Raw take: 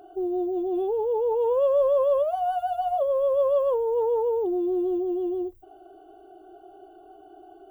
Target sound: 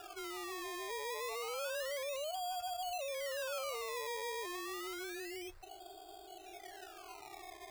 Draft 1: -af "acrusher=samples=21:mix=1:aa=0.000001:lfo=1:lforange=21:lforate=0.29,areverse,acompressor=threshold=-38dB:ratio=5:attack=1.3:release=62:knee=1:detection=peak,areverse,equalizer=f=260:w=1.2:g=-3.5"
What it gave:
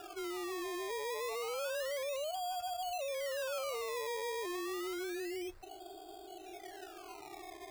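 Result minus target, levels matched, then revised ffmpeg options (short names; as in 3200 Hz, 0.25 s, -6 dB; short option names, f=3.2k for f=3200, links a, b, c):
250 Hz band +4.5 dB
-af "acrusher=samples=21:mix=1:aa=0.000001:lfo=1:lforange=21:lforate=0.29,areverse,acompressor=threshold=-38dB:ratio=5:attack=1.3:release=62:knee=1:detection=peak,areverse,equalizer=f=260:w=1.2:g=-14"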